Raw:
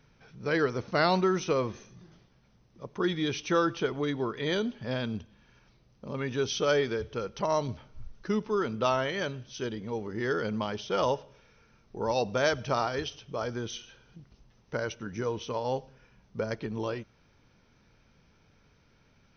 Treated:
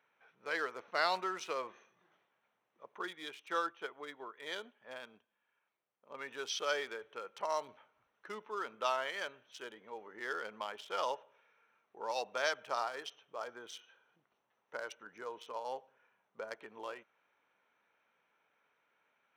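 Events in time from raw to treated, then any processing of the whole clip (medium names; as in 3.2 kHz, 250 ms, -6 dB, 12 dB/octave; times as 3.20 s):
3.04–6.11 s: upward expansion, over -42 dBFS
12.65–16.61 s: peaking EQ 2.4 kHz -3 dB 1.2 oct
whole clip: local Wiener filter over 9 samples; high-pass 760 Hz 12 dB/octave; trim -4 dB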